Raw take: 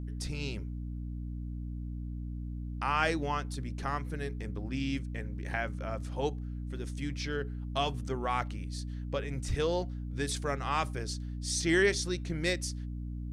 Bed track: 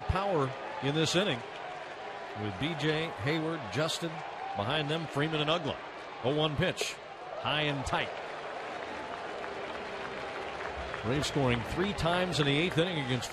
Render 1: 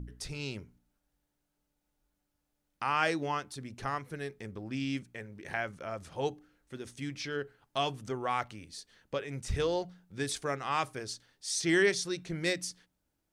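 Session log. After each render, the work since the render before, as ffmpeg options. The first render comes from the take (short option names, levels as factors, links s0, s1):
-af "bandreject=f=60:t=h:w=4,bandreject=f=120:t=h:w=4,bandreject=f=180:t=h:w=4,bandreject=f=240:t=h:w=4,bandreject=f=300:t=h:w=4"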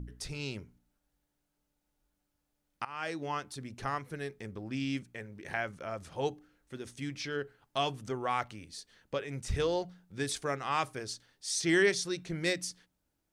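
-filter_complex "[0:a]asplit=2[s0][s1];[s0]atrim=end=2.85,asetpts=PTS-STARTPTS,afade=t=out:st=2.846:d=0.004:c=hsin:silence=0.1[s2];[s1]atrim=start=2.85,asetpts=PTS-STARTPTS,afade=t=in:d=0.63:silence=0.1[s3];[s2][s3]concat=n=2:v=0:a=1"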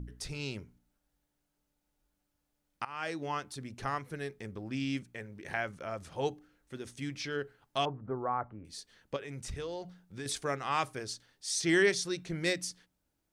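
-filter_complex "[0:a]asettb=1/sr,asplit=3[s0][s1][s2];[s0]atrim=end=7.854[s3];[s1]atrim=start=7.85:end=8.65,asetpts=PTS-STARTPTS,afade=t=in:d=0.004:c=qsin,afade=t=out:st=0.796:d=0.004:c=qsin,lowpass=f=1300:w=0.5412,lowpass=f=1300:w=1.3066[s4];[s2]atrim=start=8.646[s5];[s3][s4]acrossfade=d=0.004:c1=hsin:c2=qsin[s6];[s6][s5]acrossfade=d=0.004:c1=qsin:c2=hsin,asettb=1/sr,asplit=3[s7][s8][s9];[s7]atrim=end=9.164[s10];[s8]atrim=start=9.16:end=10.26,asetpts=PTS-STARTPTS,afade=t=in:d=0.004:c=qsin,afade=t=out:st=1.096:d=0.004:c=qsin,acompressor=threshold=0.0126:ratio=3:attack=3.2:release=140:knee=1:detection=peak[s11];[s9]atrim=start=10.256[s12];[s10][s11]acrossfade=d=0.004:c1=hsin:c2=qsin[s13];[s13][s12]acrossfade=d=0.004:c1=qsin:c2=hsin"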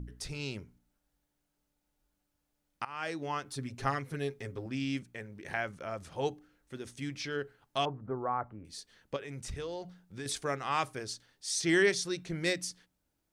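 -filter_complex "[0:a]asettb=1/sr,asplit=3[s0][s1][s2];[s0]atrim=end=3.454[s3];[s1]atrim=start=3.45:end=4.66,asetpts=PTS-STARTPTS,afade=t=in:d=0.004:c=qsin,afade=t=out:st=1.206:d=0.004:c=qsin,aecho=1:1:7.4:0.85,atrim=end_sample=53361[s4];[s2]atrim=start=4.656[s5];[s3][s4]acrossfade=d=0.004:c1=hsin:c2=qsin[s6];[s6][s5]acrossfade=d=0.004:c1=qsin:c2=hsin"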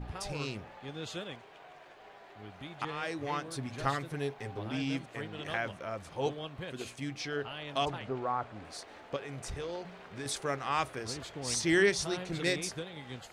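-filter_complex "[1:a]volume=0.237[s0];[0:a][s0]amix=inputs=2:normalize=0"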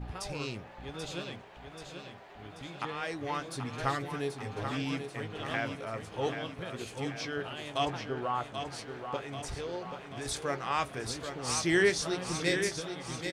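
-filter_complex "[0:a]asplit=2[s0][s1];[s1]adelay=17,volume=0.251[s2];[s0][s2]amix=inputs=2:normalize=0,aecho=1:1:784|1568|2352|3136|3920|4704|5488:0.422|0.228|0.123|0.0664|0.0359|0.0194|0.0105"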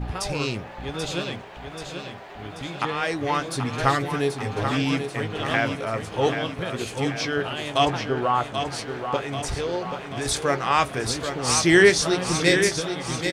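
-af "volume=3.35"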